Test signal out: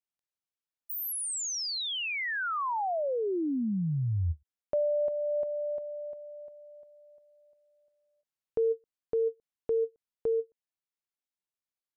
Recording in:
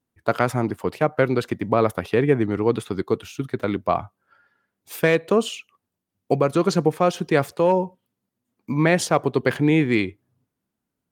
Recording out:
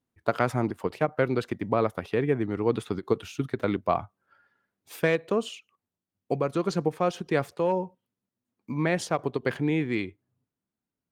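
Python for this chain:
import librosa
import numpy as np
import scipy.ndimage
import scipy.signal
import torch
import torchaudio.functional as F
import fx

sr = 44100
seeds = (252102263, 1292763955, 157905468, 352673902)

y = fx.high_shelf(x, sr, hz=9200.0, db=-7.0)
y = fx.rider(y, sr, range_db=4, speed_s=0.5)
y = fx.end_taper(y, sr, db_per_s=530.0)
y = y * librosa.db_to_amplitude(-5.5)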